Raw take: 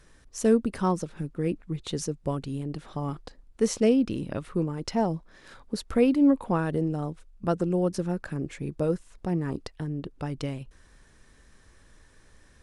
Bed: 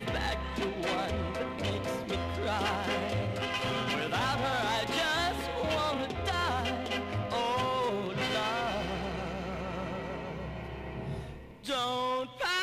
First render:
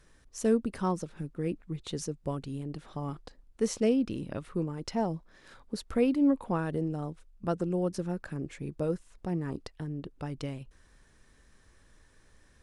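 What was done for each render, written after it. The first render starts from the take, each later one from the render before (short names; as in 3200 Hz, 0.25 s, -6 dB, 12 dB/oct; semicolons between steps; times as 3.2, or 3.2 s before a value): gain -4.5 dB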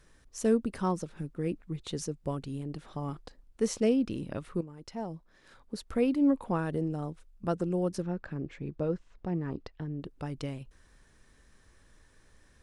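4.61–6.33 fade in, from -12 dB; 8.02–10 air absorption 150 m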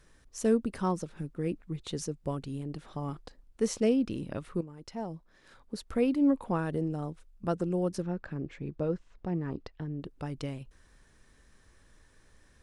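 nothing audible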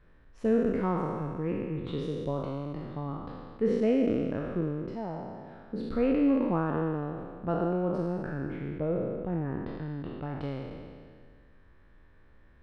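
spectral trails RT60 2.00 s; air absorption 460 m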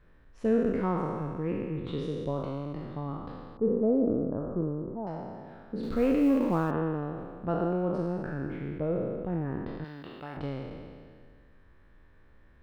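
3.57–5.07 steep low-pass 1200 Hz; 5.83–6.71 G.711 law mismatch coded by mu; 9.84–10.37 tilt +3.5 dB/oct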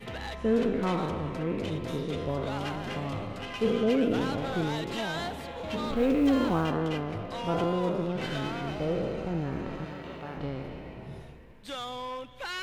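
add bed -5.5 dB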